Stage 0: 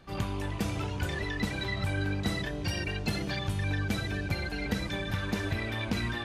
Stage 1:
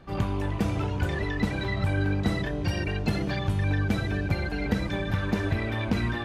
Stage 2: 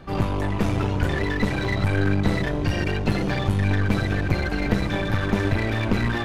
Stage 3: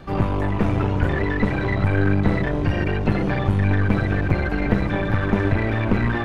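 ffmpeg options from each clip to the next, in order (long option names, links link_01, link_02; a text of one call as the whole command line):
ffmpeg -i in.wav -af "highshelf=frequency=2400:gain=-10,volume=5.5dB" out.wav
ffmpeg -i in.wav -filter_complex "[0:a]acrossover=split=2900[link_01][link_02];[link_02]alimiter=level_in=16dB:limit=-24dB:level=0:latency=1:release=12,volume=-16dB[link_03];[link_01][link_03]amix=inputs=2:normalize=0,aeval=exprs='clip(val(0),-1,0.0237)':channel_layout=same,volume=7dB" out.wav
ffmpeg -i in.wav -filter_complex "[0:a]acrossover=split=2700[link_01][link_02];[link_02]acompressor=threshold=-54dB:ratio=4:attack=1:release=60[link_03];[link_01][link_03]amix=inputs=2:normalize=0,volume=2.5dB" out.wav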